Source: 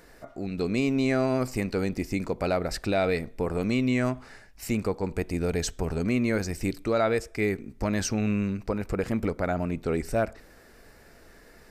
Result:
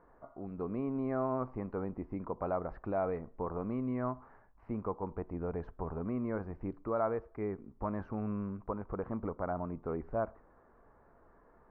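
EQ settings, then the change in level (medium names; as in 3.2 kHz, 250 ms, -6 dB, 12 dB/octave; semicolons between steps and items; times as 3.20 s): four-pole ladder low-pass 1.2 kHz, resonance 60%; 0.0 dB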